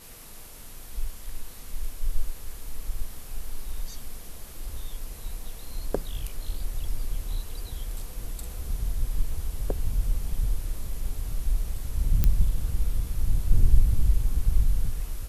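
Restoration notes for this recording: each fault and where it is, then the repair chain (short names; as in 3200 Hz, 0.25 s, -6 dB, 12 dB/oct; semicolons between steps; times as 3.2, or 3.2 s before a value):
12.24 pop -9 dBFS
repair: de-click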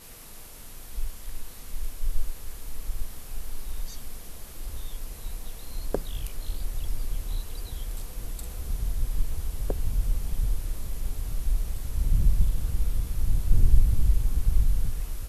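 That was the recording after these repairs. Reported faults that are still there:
none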